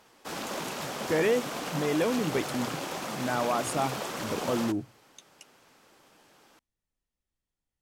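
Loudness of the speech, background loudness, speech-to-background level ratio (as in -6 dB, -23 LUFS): -30.5 LUFS, -34.5 LUFS, 4.0 dB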